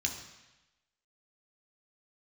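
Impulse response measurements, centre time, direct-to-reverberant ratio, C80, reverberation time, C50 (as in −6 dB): 24 ms, 1.5 dB, 9.5 dB, 1.0 s, 7.5 dB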